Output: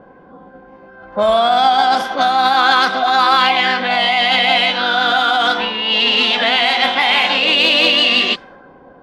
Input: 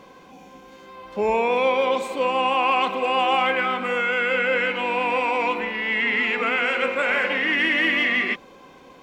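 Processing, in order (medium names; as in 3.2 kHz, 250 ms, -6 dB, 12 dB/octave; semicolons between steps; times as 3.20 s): formant shift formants +6 st; level-controlled noise filter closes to 730 Hz, open at -17.5 dBFS; trim +8 dB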